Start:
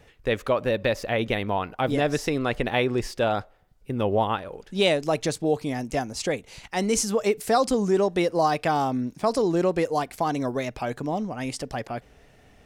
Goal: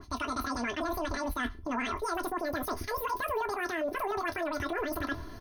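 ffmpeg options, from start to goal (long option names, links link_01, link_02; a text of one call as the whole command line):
ffmpeg -i in.wav -filter_complex "[0:a]lowpass=frequency=7900:width=0.5412,lowpass=frequency=7900:width=1.3066,lowshelf=frequency=150:gain=9.5,aecho=1:1:6.9:0.71,dynaudnorm=framelen=300:gausssize=7:maxgain=11.5dB,alimiter=limit=-15dB:level=0:latency=1:release=64,areverse,acompressor=threshold=-32dB:ratio=4,areverse,asuperstop=centerf=3200:order=12:qfactor=3.6,asplit=2[link_01][link_02];[link_02]aecho=0:1:28|59:0.335|0.251[link_03];[link_01][link_03]amix=inputs=2:normalize=0,asetrate=103194,aresample=44100,adynamicequalizer=threshold=0.00447:dfrequency=2600:dqfactor=0.7:tfrequency=2600:tqfactor=0.7:attack=5:release=100:ratio=0.375:range=2.5:mode=cutabove:tftype=highshelf" out.wav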